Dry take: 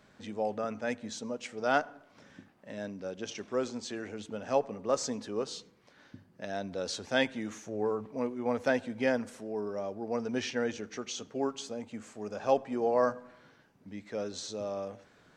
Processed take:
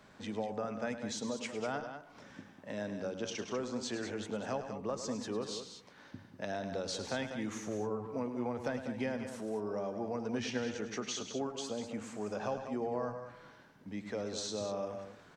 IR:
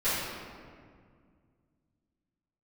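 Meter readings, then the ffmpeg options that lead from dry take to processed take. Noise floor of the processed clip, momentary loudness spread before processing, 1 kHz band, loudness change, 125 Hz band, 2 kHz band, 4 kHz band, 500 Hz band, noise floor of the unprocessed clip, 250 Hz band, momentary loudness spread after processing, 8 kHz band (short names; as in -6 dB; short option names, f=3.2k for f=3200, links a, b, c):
-59 dBFS, 12 LU, -6.0 dB, -4.5 dB, +1.0 dB, -6.5 dB, -2.0 dB, -5.5 dB, -63 dBFS, -2.0 dB, 10 LU, -1.0 dB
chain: -filter_complex "[0:a]equalizer=f=970:t=o:w=0.64:g=3.5,acrossover=split=170[a][b];[b]acompressor=threshold=-36dB:ratio=10[c];[a][c]amix=inputs=2:normalize=0,aecho=1:1:105|195.3:0.282|0.355,volume=1.5dB"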